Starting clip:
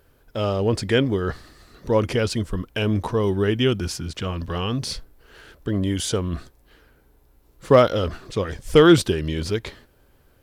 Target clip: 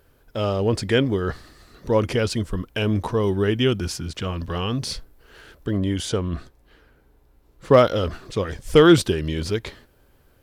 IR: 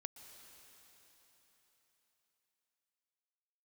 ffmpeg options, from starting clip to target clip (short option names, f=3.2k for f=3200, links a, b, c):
-filter_complex "[0:a]asettb=1/sr,asplit=3[a][b][c];[a]atrim=end=5.774[d];[b]atrim=start=5.77:end=7.74,asetpts=PTS-STARTPTS,afade=t=in:d=0.004:c=qsin,afade=t=out:st=1.966:d=0.004:c=qsin,highshelf=f=6.3k:g=-8[e];[c]atrim=start=7.736[f];[d][e]acrossfade=d=0.004:c1=hsin:c2=qsin[g];[g][f]acrossfade=d=0.004:c1=qsin:c2=hsin"